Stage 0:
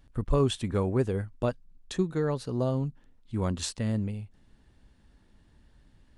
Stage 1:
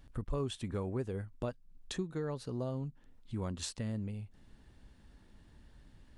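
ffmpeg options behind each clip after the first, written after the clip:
-af "acompressor=threshold=0.00708:ratio=2,volume=1.12"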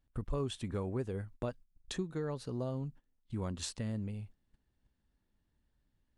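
-af "agate=range=0.112:threshold=0.00316:ratio=16:detection=peak"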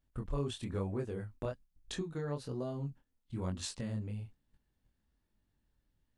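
-af "flanger=delay=20:depth=7.9:speed=1.1,volume=1.33"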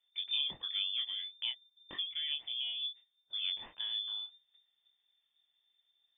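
-af "lowpass=f=3100:t=q:w=0.5098,lowpass=f=3100:t=q:w=0.6013,lowpass=f=3100:t=q:w=0.9,lowpass=f=3100:t=q:w=2.563,afreqshift=-3600"

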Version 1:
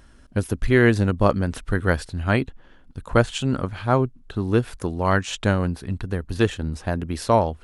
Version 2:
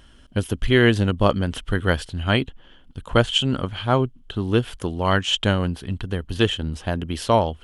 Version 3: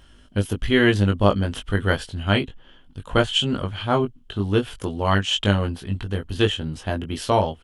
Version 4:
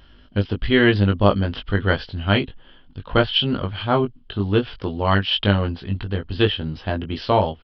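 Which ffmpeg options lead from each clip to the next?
-af "equalizer=f=3100:w=5:g=14.5"
-filter_complex "[0:a]asplit=2[s0][s1];[s1]adelay=20,volume=0.631[s2];[s0][s2]amix=inputs=2:normalize=0,volume=0.794"
-af "aresample=11025,aresample=44100,volume=1.19"

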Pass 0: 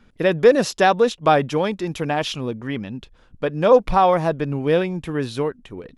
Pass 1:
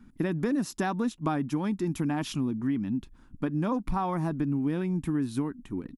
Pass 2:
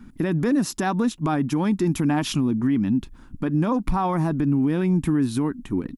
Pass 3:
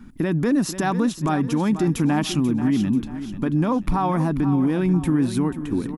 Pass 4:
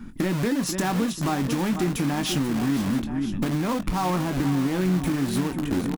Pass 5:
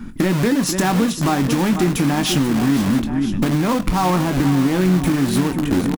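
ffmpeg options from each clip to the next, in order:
-af "firequalizer=gain_entry='entry(110,0);entry(280,8);entry(480,-15);entry(920,-3);entry(3100,-11);entry(9200,2)':delay=0.05:min_phase=1,acompressor=threshold=0.0631:ratio=6,volume=0.891"
-af "alimiter=limit=0.0708:level=0:latency=1:release=42,volume=2.82"
-af "aecho=1:1:488|976|1464|1952:0.266|0.104|0.0405|0.0158,volume=1.12"
-filter_complex "[0:a]asplit=2[s0][s1];[s1]aeval=exprs='(mod(12.6*val(0)+1,2)-1)/12.6':c=same,volume=0.501[s2];[s0][s2]amix=inputs=2:normalize=0,acompressor=threshold=0.0891:ratio=6,asplit=2[s3][s4];[s4]adelay=22,volume=0.335[s5];[s3][s5]amix=inputs=2:normalize=0"
-af "aecho=1:1:101:0.0891,volume=2.24"

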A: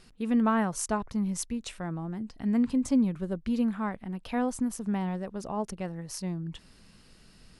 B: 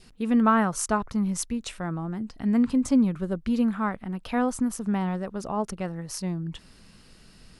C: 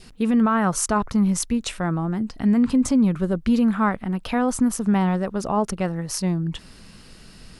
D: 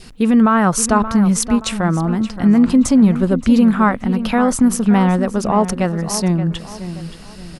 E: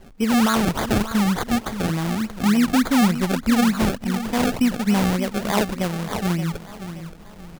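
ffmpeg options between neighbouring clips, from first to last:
-af "adynamicequalizer=threshold=0.00316:dfrequency=1300:dqfactor=3.2:tfrequency=1300:tqfactor=3.2:attack=5:release=100:ratio=0.375:range=3:mode=boostabove:tftype=bell,volume=1.5"
-af "alimiter=limit=0.112:level=0:latency=1:release=16,volume=2.24"
-filter_complex "[0:a]asplit=2[s0][s1];[s1]adelay=575,lowpass=f=3400:p=1,volume=0.266,asplit=2[s2][s3];[s3]adelay=575,lowpass=f=3400:p=1,volume=0.37,asplit=2[s4][s5];[s5]adelay=575,lowpass=f=3400:p=1,volume=0.37,asplit=2[s6][s7];[s7]adelay=575,lowpass=f=3400:p=1,volume=0.37[s8];[s0][s2][s4][s6][s8]amix=inputs=5:normalize=0,volume=2.11"
-af "acrusher=samples=31:mix=1:aa=0.000001:lfo=1:lforange=31:lforate=3.4,volume=0.501"

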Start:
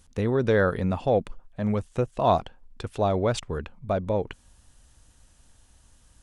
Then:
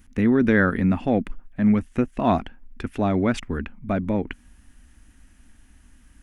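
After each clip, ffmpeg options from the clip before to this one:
-af "equalizer=f=125:t=o:w=1:g=-10,equalizer=f=250:t=o:w=1:g=10,equalizer=f=500:t=o:w=1:g=-11,equalizer=f=1000:t=o:w=1:g=-6,equalizer=f=2000:t=o:w=1:g=6,equalizer=f=4000:t=o:w=1:g=-10,equalizer=f=8000:t=o:w=1:g=-9,volume=2.11"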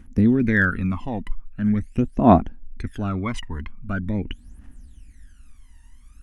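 -af "aphaser=in_gain=1:out_gain=1:delay=1.1:decay=0.8:speed=0.43:type=triangular,volume=0.531"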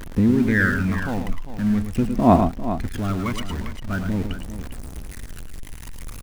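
-filter_complex "[0:a]aeval=exprs='val(0)+0.5*0.0376*sgn(val(0))':c=same,asplit=2[s0][s1];[s1]aecho=0:1:98|110|399:0.133|0.422|0.266[s2];[s0][s2]amix=inputs=2:normalize=0,volume=0.841"

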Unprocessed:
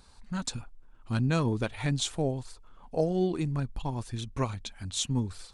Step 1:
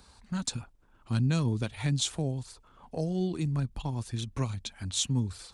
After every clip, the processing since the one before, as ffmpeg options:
-filter_complex "[0:a]acrossover=split=230|3000[s0][s1][s2];[s1]acompressor=threshold=0.00631:ratio=2[s3];[s0][s3][s2]amix=inputs=3:normalize=0,highpass=41,volume=1.26"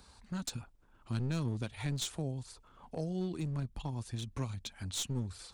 -filter_complex "[0:a]asplit=2[s0][s1];[s1]acompressor=threshold=0.0126:ratio=6,volume=1[s2];[s0][s2]amix=inputs=2:normalize=0,aeval=exprs='clip(val(0),-1,0.0447)':c=same,volume=0.398"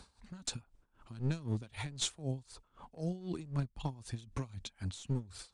-af "aresample=22050,aresample=44100,aeval=exprs='val(0)*pow(10,-19*(0.5-0.5*cos(2*PI*3.9*n/s))/20)':c=same,volume=1.58"

